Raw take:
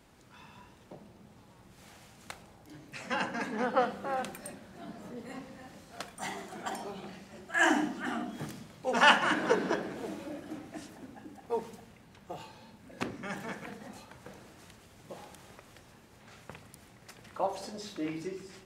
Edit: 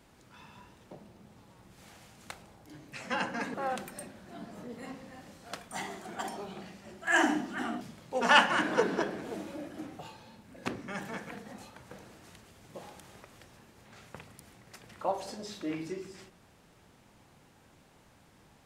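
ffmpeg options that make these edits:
-filter_complex "[0:a]asplit=4[a][b][c][d];[a]atrim=end=3.542[e];[b]atrim=start=4.008:end=8.282[f];[c]atrim=start=8.528:end=10.712[g];[d]atrim=start=12.338[h];[e][f]acrossfade=d=0.004:c1=hsin:c2=hsin[i];[i][g]acrossfade=d=0.004:c1=hsin:c2=hsin[j];[j][h]acrossfade=d=0.004:c1=hsin:c2=hsin"

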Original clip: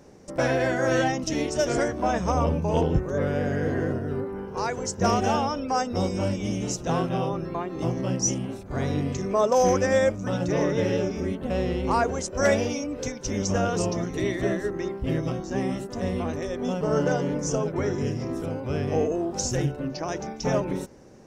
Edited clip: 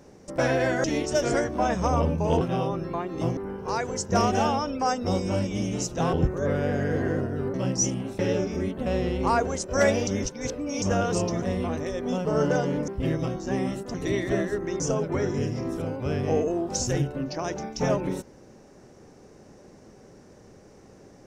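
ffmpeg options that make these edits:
-filter_complex "[0:a]asplit=13[a][b][c][d][e][f][g][h][i][j][k][l][m];[a]atrim=end=0.842[n];[b]atrim=start=1.278:end=2.852[o];[c]atrim=start=7.018:end=7.982[p];[d]atrim=start=4.258:end=7.022[q];[e]atrim=start=2.848:end=4.262[r];[f]atrim=start=7.978:end=8.632[s];[g]atrim=start=10.828:end=12.712[t];[h]atrim=start=12.708:end=13.462,asetpts=PTS-STARTPTS,areverse[u];[i]atrim=start=13.458:end=14.062[v];[j]atrim=start=15.978:end=17.442[w];[k]atrim=start=14.918:end=15.982[x];[l]atrim=start=14.058:end=14.922[y];[m]atrim=start=17.438[z];[n][o]acrossfade=d=0.004:c1=hsin:c2=hsin[aa];[aa][p]acrossfade=d=0.004:c1=hsin:c2=hsin[ab];[ab][q]acrossfade=d=0.004:c1=hsin:c2=hsin[ac];[ac][r]acrossfade=d=0.004:c1=hsin:c2=hsin[ad];[ad][s]acrossfade=d=0.004:c1=hsin:c2=hsin[ae];[ae][t]acrossfade=d=0.004:c1=hsin:c2=hsin[af];[af][u]acrossfade=d=0.004:c1=hsin:c2=hsin[ag];[ag][v]acrossfade=d=0.004:c1=hsin:c2=hsin[ah];[ah][w]acrossfade=d=0.004:c1=hsin:c2=hsin[ai];[ai][x]acrossfade=d=0.004:c1=hsin:c2=hsin[aj];[aj][y]acrossfade=d=0.004:c1=hsin:c2=hsin[ak];[ak][z]acrossfade=d=0.004:c1=hsin:c2=hsin"

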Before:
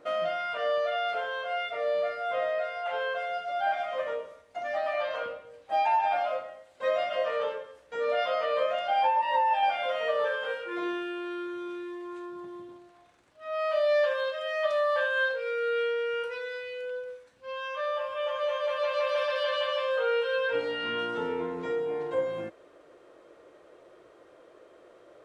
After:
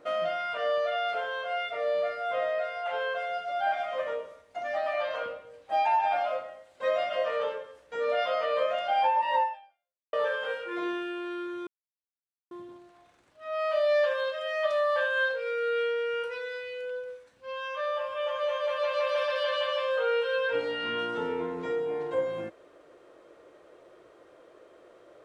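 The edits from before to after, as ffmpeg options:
-filter_complex "[0:a]asplit=4[a][b][c][d];[a]atrim=end=10.13,asetpts=PTS-STARTPTS,afade=t=out:st=9.43:d=0.7:c=exp[e];[b]atrim=start=10.13:end=11.67,asetpts=PTS-STARTPTS,afade=t=in:d=0.004:c=hsin,afade=t=out:st=1.536:d=0.004:c=hsin[f];[c]atrim=start=11.67:end=12.51,asetpts=PTS-STARTPTS,volume=0[g];[d]atrim=start=12.51,asetpts=PTS-STARTPTS,afade=t=in:d=0.004:c=hsin[h];[e][f][g][h]concat=n=4:v=0:a=1"

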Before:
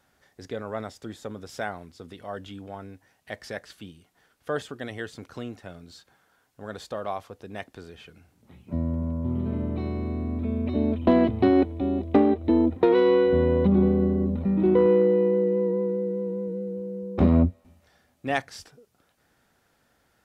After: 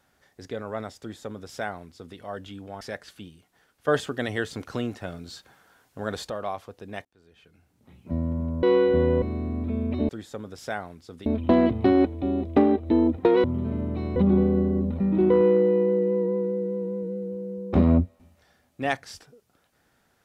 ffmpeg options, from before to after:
-filter_complex "[0:a]asplit=11[a][b][c][d][e][f][g][h][i][j][k];[a]atrim=end=2.812[l];[b]atrim=start=3.428:end=4.502[m];[c]atrim=start=4.498:end=6.922,asetpts=PTS-STARTPTS,volume=6.5dB[n];[d]atrim=start=6.918:end=7.67,asetpts=PTS-STARTPTS,afade=t=out:st=0.748:d=0.004:c=hsin[o];[e]atrim=start=7.67:end=9.252,asetpts=PTS-STARTPTS,afade=t=in:d=1.08[p];[f]atrim=start=13.018:end=13.612[q];[g]atrim=start=9.968:end=10.842[r];[h]atrim=start=0.998:end=2.172[s];[i]atrim=start=10.838:end=13.022[t];[j]atrim=start=9.248:end=9.972[u];[k]atrim=start=13.608[v];[l][m]acrossfade=d=0.004:c1=hsin:c2=hsin[w];[w][n]acrossfade=d=0.004:c1=hsin:c2=hsin[x];[o][p]concat=n=2:v=0:a=1[y];[x][y]acrossfade=d=0.004:c1=hsin:c2=hsin[z];[z][q]acrossfade=d=0.004:c1=hsin:c2=hsin[aa];[aa][r]acrossfade=d=0.004:c1=hsin:c2=hsin[ab];[ab][s]acrossfade=d=0.004:c1=hsin:c2=hsin[ac];[ac][t]acrossfade=d=0.004:c1=hsin:c2=hsin[ad];[ad][u]acrossfade=d=0.004:c1=hsin:c2=hsin[ae];[ae][v]acrossfade=d=0.004:c1=hsin:c2=hsin"

